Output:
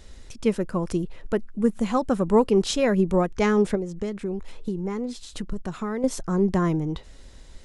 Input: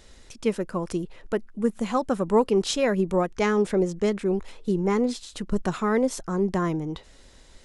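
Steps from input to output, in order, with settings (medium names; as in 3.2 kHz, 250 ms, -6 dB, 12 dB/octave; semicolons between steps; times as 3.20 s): bass shelf 190 Hz +8 dB; 3.75–6.04 s: compression 4:1, threshold -27 dBFS, peak gain reduction 11.5 dB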